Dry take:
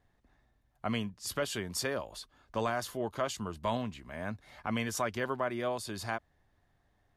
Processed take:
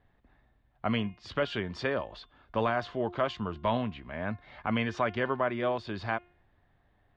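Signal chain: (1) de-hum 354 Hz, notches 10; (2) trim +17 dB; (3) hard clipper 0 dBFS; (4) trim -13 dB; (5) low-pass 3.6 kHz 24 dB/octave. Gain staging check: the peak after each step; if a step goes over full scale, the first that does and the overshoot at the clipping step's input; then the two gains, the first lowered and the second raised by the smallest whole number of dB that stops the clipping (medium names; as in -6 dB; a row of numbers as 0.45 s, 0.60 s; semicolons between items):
-20.0 dBFS, -3.0 dBFS, -3.0 dBFS, -16.0 dBFS, -16.0 dBFS; nothing clips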